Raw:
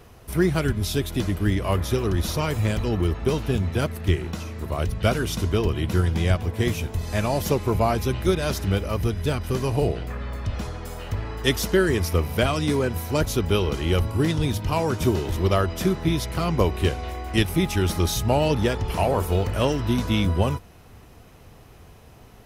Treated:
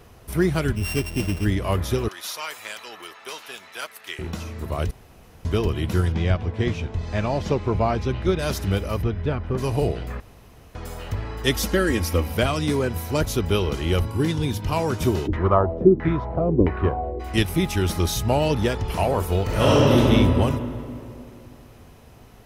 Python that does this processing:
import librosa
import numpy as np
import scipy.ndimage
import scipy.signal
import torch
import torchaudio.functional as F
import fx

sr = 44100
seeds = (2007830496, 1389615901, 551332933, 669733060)

y = fx.sample_sort(x, sr, block=16, at=(0.75, 1.44), fade=0.02)
y = fx.highpass(y, sr, hz=1100.0, slope=12, at=(2.08, 4.19))
y = fx.air_absorb(y, sr, metres=130.0, at=(6.12, 8.39))
y = fx.lowpass(y, sr, hz=fx.line((9.01, 2900.0), (9.57, 1600.0)), slope=12, at=(9.01, 9.57), fade=0.02)
y = fx.comb(y, sr, ms=3.7, depth=0.65, at=(11.54, 12.34))
y = fx.notch_comb(y, sr, f0_hz=640.0, at=(14.05, 14.63))
y = fx.filter_lfo_lowpass(y, sr, shape='saw_down', hz=1.5, low_hz=270.0, high_hz=2000.0, q=3.9, at=(15.26, 17.19), fade=0.02)
y = fx.reverb_throw(y, sr, start_s=19.43, length_s=0.54, rt60_s=2.7, drr_db=-7.5)
y = fx.edit(y, sr, fx.room_tone_fill(start_s=4.91, length_s=0.54),
    fx.room_tone_fill(start_s=10.2, length_s=0.55), tone=tone)